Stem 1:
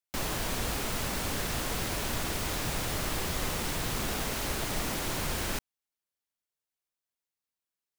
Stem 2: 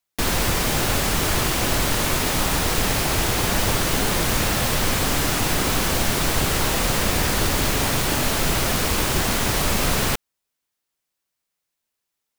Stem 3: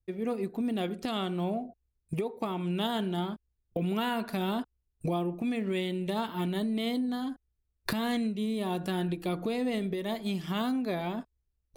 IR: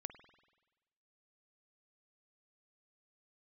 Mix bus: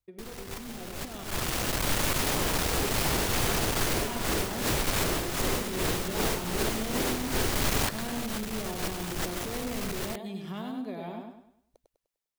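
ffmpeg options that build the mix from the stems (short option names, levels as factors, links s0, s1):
-filter_complex "[0:a]equalizer=f=400:t=o:w=0.77:g=7.5,aeval=exprs='val(0)*pow(10,-18*(0.5-0.5*cos(2*PI*2.6*n/s))/20)':c=same,adelay=2050,volume=1.26[s0];[1:a]aeval=exprs='(tanh(11.2*val(0)+0.65)-tanh(0.65))/11.2':c=same,volume=0.422[s1];[2:a]equalizer=f=470:w=0.32:g=5.5,acompressor=threshold=0.0251:ratio=6,volume=0.266,asplit=3[s2][s3][s4];[s2]atrim=end=1.24,asetpts=PTS-STARTPTS,afade=t=out:st=1.236:d=0.004:c=hsin[s5];[s3]atrim=start=1.24:end=3.95,asetpts=PTS-STARTPTS,volume=0[s6];[s4]atrim=start=3.95,asetpts=PTS-STARTPTS,afade=t=in:d=0.004:c=hsin[s7];[s5][s6][s7]concat=n=3:v=0:a=1,asplit=3[s8][s9][s10];[s9]volume=0.668[s11];[s10]apad=whole_len=546396[s12];[s1][s12]sidechaincompress=threshold=0.002:ratio=8:attack=7.4:release=153[s13];[s11]aecho=0:1:100|200|300|400|500|600:1|0.4|0.16|0.064|0.0256|0.0102[s14];[s0][s13][s8][s14]amix=inputs=4:normalize=0,dynaudnorm=f=670:g=5:m=2.37,alimiter=limit=0.133:level=0:latency=1:release=133"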